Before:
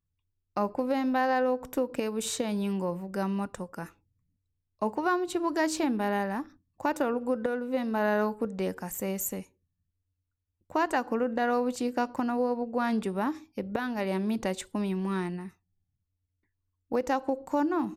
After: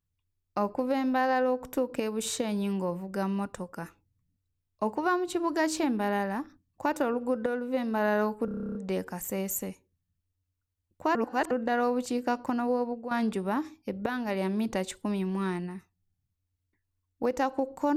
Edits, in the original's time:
8.45 s: stutter 0.03 s, 11 plays
10.85–11.21 s: reverse
12.46–12.81 s: fade out equal-power, to -11 dB

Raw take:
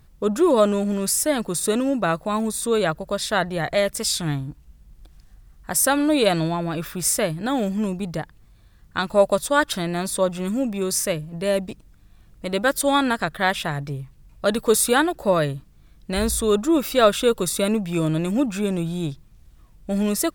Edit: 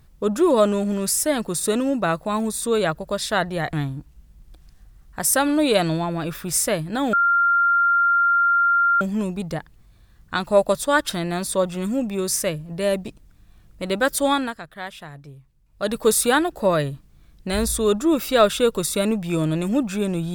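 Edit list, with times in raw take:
3.73–4.24 s: delete
7.64 s: add tone 1.39 kHz -14.5 dBFS 1.88 s
12.91–14.62 s: dip -12.5 dB, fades 0.30 s

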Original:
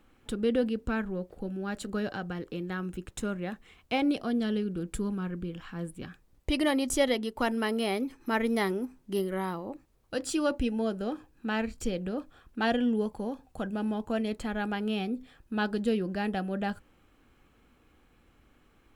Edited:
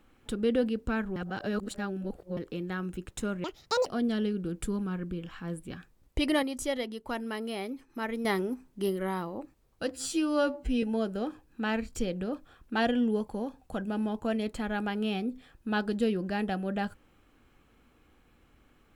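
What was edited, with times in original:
1.16–2.37 s: reverse
3.44–4.17 s: speed 175%
6.74–8.56 s: gain -6 dB
10.22–10.68 s: stretch 2×

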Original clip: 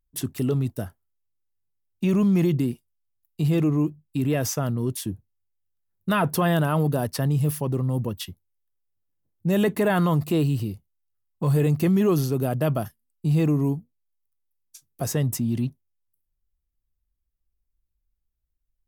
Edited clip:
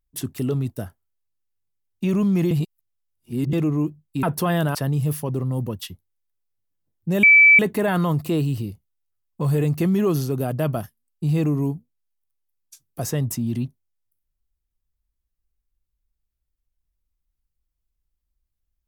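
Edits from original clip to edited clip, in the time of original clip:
2.51–3.53 s: reverse
4.23–6.19 s: delete
6.71–7.13 s: delete
9.61 s: add tone 2.31 kHz -8 dBFS 0.36 s

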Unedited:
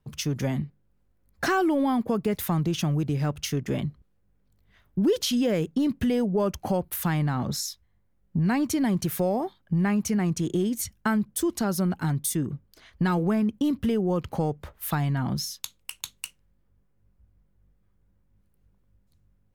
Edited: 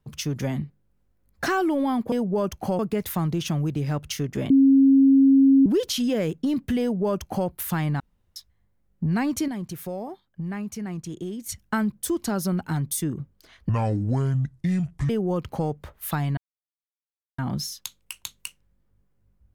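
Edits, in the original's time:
3.83–4.99 s: bleep 271 Hz -12 dBFS
6.14–6.81 s: copy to 2.12 s
7.33–7.69 s: room tone
8.81–10.82 s: gain -7.5 dB
13.02–13.89 s: speed 62%
15.17 s: insert silence 1.01 s

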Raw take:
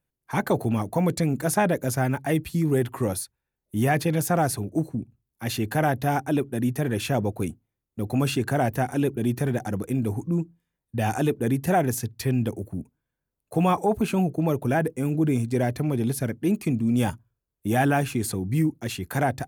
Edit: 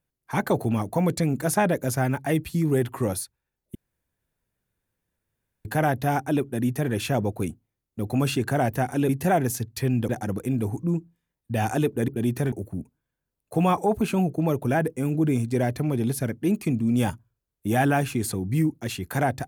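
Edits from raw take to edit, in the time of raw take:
3.75–5.65 s: room tone
9.09–9.53 s: swap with 11.52–12.52 s

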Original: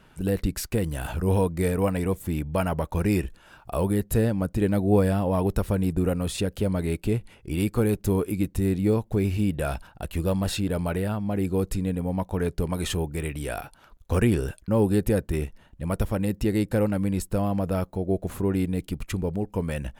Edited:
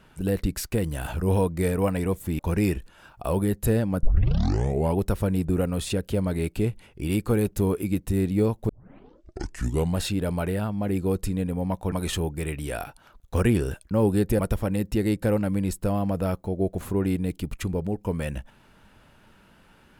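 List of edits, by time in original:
2.39–2.87 s: delete
4.51 s: tape start 0.95 s
9.17 s: tape start 1.33 s
12.40–12.69 s: delete
15.16–15.88 s: delete

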